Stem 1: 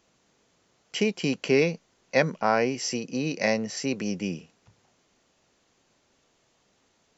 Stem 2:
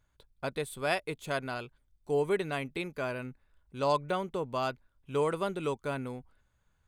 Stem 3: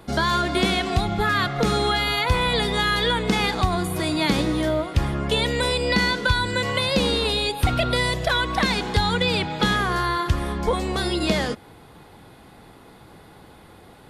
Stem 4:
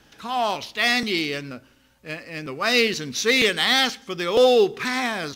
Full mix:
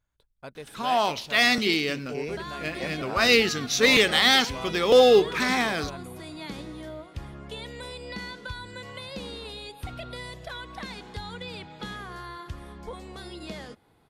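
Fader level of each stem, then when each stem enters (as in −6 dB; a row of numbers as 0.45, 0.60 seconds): −13.5, −7.0, −16.5, 0.0 decibels; 0.65, 0.00, 2.20, 0.55 seconds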